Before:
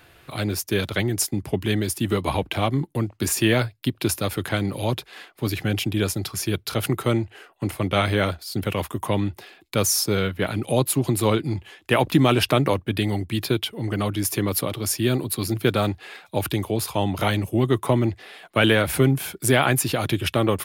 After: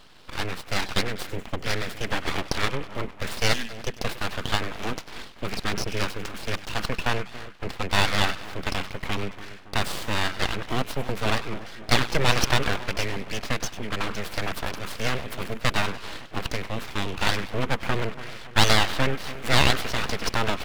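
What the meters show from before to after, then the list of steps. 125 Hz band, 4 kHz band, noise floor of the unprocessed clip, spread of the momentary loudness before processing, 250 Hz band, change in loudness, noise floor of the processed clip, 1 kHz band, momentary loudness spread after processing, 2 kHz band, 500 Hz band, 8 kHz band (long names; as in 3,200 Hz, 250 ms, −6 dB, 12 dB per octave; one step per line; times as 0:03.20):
−7.5 dB, +1.0 dB, −55 dBFS, 8 LU, −9.5 dB, −4.0 dB, −42 dBFS, −0.5 dB, 12 LU, +1.0 dB, −7.0 dB, −7.0 dB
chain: running median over 9 samples
time-frequency box erased 0:03.53–0:03.75, 230–2,900 Hz
flat-topped bell 1,900 Hz +11.5 dB
on a send: echo with a time of its own for lows and highs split 890 Hz, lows 280 ms, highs 98 ms, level −13.5 dB
on the sum: full-wave rectification
level −4 dB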